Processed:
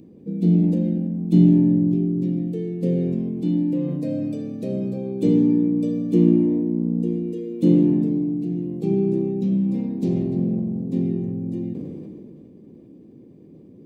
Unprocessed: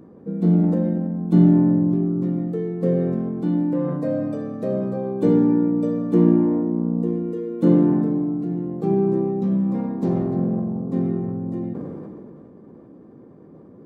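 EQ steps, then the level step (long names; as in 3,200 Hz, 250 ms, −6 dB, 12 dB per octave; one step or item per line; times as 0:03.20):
drawn EQ curve 330 Hz 0 dB, 1,400 Hz −20 dB, 2,500 Hz +5 dB
0.0 dB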